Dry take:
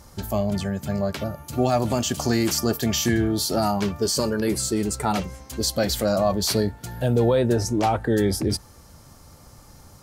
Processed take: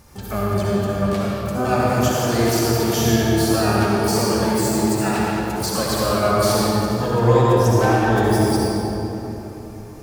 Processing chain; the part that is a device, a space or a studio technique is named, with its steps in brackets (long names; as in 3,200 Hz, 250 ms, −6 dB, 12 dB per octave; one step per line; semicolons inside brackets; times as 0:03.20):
shimmer-style reverb (pitch-shifted copies added +12 semitones −5 dB; convolution reverb RT60 3.6 s, pre-delay 55 ms, DRR −5.5 dB)
level −3.5 dB